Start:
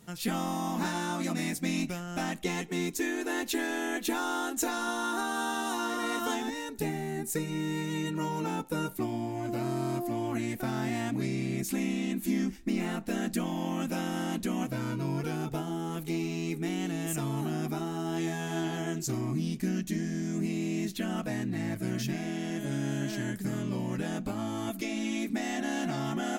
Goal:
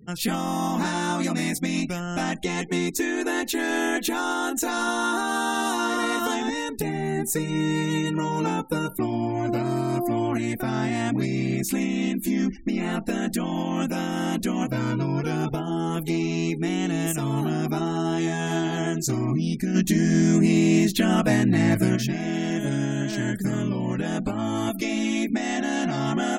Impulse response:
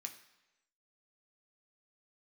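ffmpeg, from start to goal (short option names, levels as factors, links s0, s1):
-filter_complex "[0:a]alimiter=limit=0.0668:level=0:latency=1:release=247,asplit=3[s0][s1][s2];[s0]afade=t=out:st=19.74:d=0.02[s3];[s1]acontrast=43,afade=t=in:st=19.74:d=0.02,afade=t=out:st=21.95:d=0.02[s4];[s2]afade=t=in:st=21.95:d=0.02[s5];[s3][s4][s5]amix=inputs=3:normalize=0,afftfilt=real='re*gte(hypot(re,im),0.00316)':imag='im*gte(hypot(re,im),0.00316)':win_size=1024:overlap=0.75,volume=2.66"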